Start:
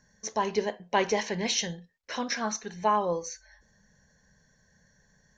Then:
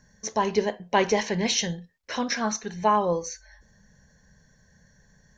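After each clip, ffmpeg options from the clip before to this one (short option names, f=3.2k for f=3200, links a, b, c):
-af "lowshelf=f=210:g=5.5,volume=3dB"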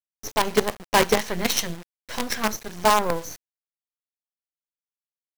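-af "acrusher=bits=4:dc=4:mix=0:aa=0.000001,volume=2.5dB"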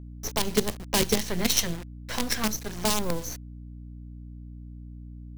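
-filter_complex "[0:a]acrossover=split=350|3000[a][b][c];[b]acompressor=threshold=-32dB:ratio=6[d];[a][d][c]amix=inputs=3:normalize=0,aeval=exprs='val(0)+0.00891*(sin(2*PI*60*n/s)+sin(2*PI*2*60*n/s)/2+sin(2*PI*3*60*n/s)/3+sin(2*PI*4*60*n/s)/4+sin(2*PI*5*60*n/s)/5)':c=same,volume=1dB"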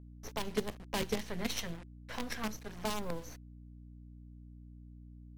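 -af "bass=f=250:g=-2,treble=f=4k:g=-10,bandreject=f=360:w=12,volume=-8dB" -ar 44100 -c:a libmp3lame -b:a 80k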